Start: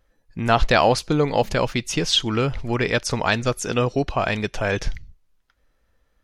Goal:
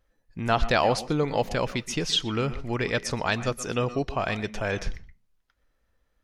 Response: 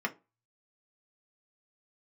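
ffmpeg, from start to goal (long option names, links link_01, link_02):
-filter_complex "[0:a]asplit=2[link_01][link_02];[1:a]atrim=start_sample=2205,adelay=120[link_03];[link_02][link_03]afir=irnorm=-1:irlink=0,volume=-20dB[link_04];[link_01][link_04]amix=inputs=2:normalize=0,volume=-5.5dB"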